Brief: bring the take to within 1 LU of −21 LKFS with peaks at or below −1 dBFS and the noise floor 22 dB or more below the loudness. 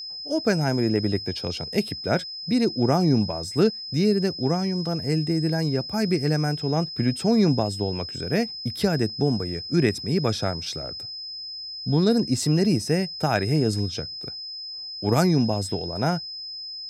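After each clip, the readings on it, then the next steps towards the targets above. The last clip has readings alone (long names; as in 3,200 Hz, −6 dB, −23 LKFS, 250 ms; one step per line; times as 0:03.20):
interfering tone 5,100 Hz; level of the tone −33 dBFS; integrated loudness −24.5 LKFS; sample peak −6.5 dBFS; target loudness −21.0 LKFS
→ notch filter 5,100 Hz, Q 30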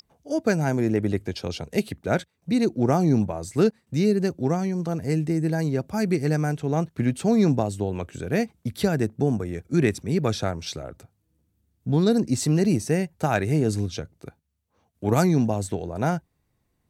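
interfering tone none found; integrated loudness −24.5 LKFS; sample peak −6.5 dBFS; target loudness −21.0 LKFS
→ level +3.5 dB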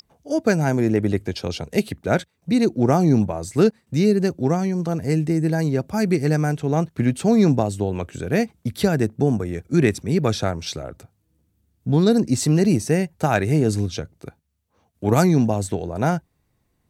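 integrated loudness −21.0 LKFS; sample peak −3.0 dBFS; background noise floor −69 dBFS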